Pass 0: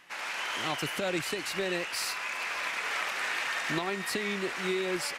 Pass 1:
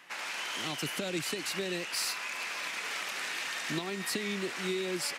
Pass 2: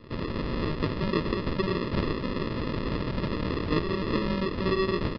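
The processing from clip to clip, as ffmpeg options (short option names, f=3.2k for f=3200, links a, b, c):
-filter_complex "[0:a]highpass=140,acrossover=split=340|3000[a][b][c];[b]acompressor=threshold=-40dB:ratio=6[d];[a][d][c]amix=inputs=3:normalize=0,volume=1.5dB"
-af "aresample=16000,acrusher=samples=21:mix=1:aa=0.000001,aresample=44100,aresample=11025,aresample=44100,volume=7.5dB"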